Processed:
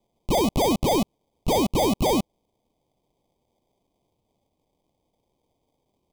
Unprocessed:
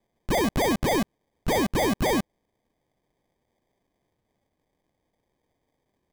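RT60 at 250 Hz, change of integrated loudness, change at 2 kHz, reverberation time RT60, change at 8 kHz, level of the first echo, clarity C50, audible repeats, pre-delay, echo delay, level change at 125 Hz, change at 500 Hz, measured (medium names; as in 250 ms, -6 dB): no reverb, +2.0 dB, -6.5 dB, no reverb, +2.0 dB, no echo, no reverb, no echo, no reverb, no echo, +2.0 dB, +2.5 dB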